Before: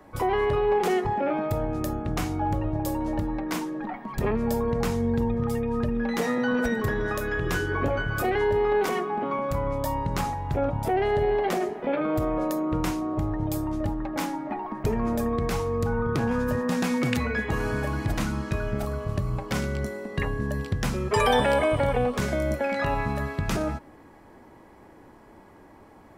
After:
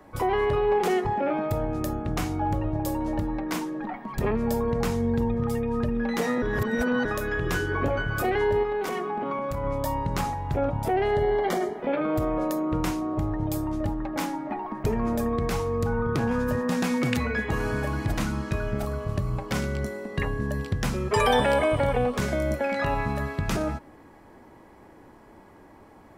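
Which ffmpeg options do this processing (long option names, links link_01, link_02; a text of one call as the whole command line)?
ffmpeg -i in.wav -filter_complex "[0:a]asettb=1/sr,asplit=3[link_01][link_02][link_03];[link_01]atrim=end=8.634[link_04];[link_02]atrim=start=8.63:end=9.64,asetpts=PTS-STARTPTS,afade=type=in:duration=0.004:curve=qsin,afade=type=out:start_time=1.006:duration=0.004:curve=qsin,acompressor=threshold=-25dB:ratio=5:attack=3.2:release=140:knee=1:detection=peak[link_05];[link_03]atrim=start=9.636[link_06];[link_04][link_05]acrossfade=duration=0.004:curve1=hsin:curve2=qsin[link_07];[link_07][link_06]acrossfade=duration=0.004:curve1=qsin:curve2=hsin,asettb=1/sr,asplit=3[link_08][link_09][link_10];[link_08]atrim=end=11.144[link_11];[link_09]atrim=start=11.14:end=11.79,asetpts=PTS-STARTPTS,afade=type=in:duration=0.004:curve=qsin,afade=type=out:start_time=0.646:duration=0.004:curve=qsin,asuperstop=centerf=2600:order=20:qfactor=6.9[link_12];[link_10]atrim=start=11.786[link_13];[link_11][link_12]acrossfade=duration=0.004:curve1=hsin:curve2=qsin[link_14];[link_14][link_13]acrossfade=duration=0.004:curve1=qsin:curve2=hsin,asplit=3[link_15][link_16][link_17];[link_15]atrim=end=6.422[link_18];[link_16]atrim=start=6.418:end=7.052,asetpts=PTS-STARTPTS,areverse[link_19];[link_17]atrim=start=7.048[link_20];[link_18][link_19]acrossfade=duration=0.004:curve1=hsin:curve2=hsin[link_21];[link_21][link_20]acrossfade=duration=0.004:curve1=hsin:curve2=hsin" out.wav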